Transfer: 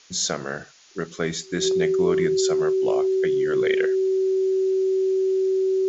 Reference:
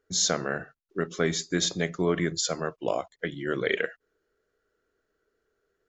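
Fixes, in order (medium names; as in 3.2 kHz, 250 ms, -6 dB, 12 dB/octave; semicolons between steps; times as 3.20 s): band-stop 380 Hz, Q 30; noise print and reduce 30 dB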